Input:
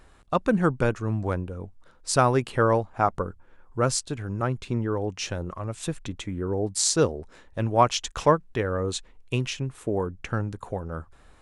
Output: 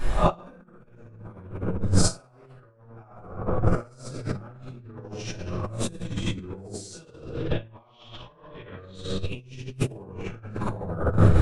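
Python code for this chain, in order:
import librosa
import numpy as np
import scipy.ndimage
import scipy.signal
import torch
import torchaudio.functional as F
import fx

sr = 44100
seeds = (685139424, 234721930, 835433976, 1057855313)

y = fx.spec_swells(x, sr, rise_s=0.34)
y = fx.lowpass_res(y, sr, hz=3400.0, q=3.7, at=(6.92, 8.95))
y = fx.room_shoebox(y, sr, seeds[0], volume_m3=750.0, walls='mixed', distance_m=8.6)
y = fx.over_compress(y, sr, threshold_db=-23.0, ratio=-0.5)
y = fx.low_shelf(y, sr, hz=180.0, db=4.0)
y = y * 10.0 ** (-7.0 / 20.0)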